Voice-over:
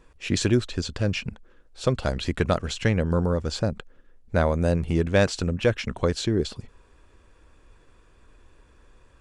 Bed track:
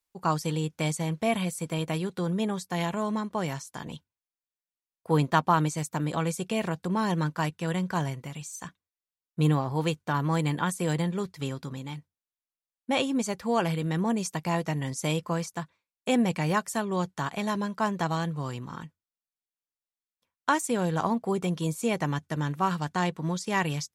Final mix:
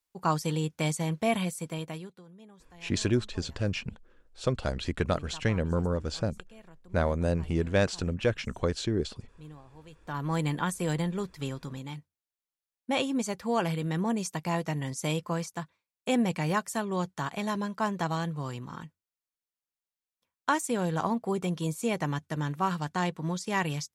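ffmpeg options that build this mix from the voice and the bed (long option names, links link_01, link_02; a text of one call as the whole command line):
ffmpeg -i stem1.wav -i stem2.wav -filter_complex "[0:a]adelay=2600,volume=-5dB[link_01];[1:a]volume=21.5dB,afade=type=out:start_time=1.38:duration=0.85:silence=0.0668344,afade=type=in:start_time=9.9:duration=0.5:silence=0.0794328[link_02];[link_01][link_02]amix=inputs=2:normalize=0" out.wav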